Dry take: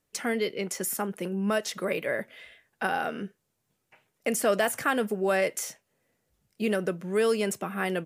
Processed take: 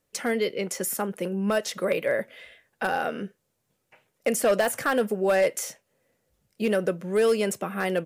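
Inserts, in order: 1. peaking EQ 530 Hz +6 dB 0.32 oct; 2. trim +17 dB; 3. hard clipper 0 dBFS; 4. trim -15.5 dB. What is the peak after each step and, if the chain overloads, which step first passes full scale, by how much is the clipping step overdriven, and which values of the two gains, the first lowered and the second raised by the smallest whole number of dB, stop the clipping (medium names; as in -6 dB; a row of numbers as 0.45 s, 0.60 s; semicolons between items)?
-11.5 dBFS, +5.5 dBFS, 0.0 dBFS, -15.5 dBFS; step 2, 5.5 dB; step 2 +11 dB, step 4 -9.5 dB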